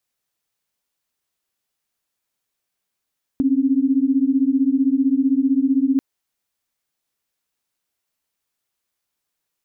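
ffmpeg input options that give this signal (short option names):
-f lavfi -i "aevalsrc='0.133*(sin(2*PI*261.63*t)+sin(2*PI*277.18*t))':d=2.59:s=44100"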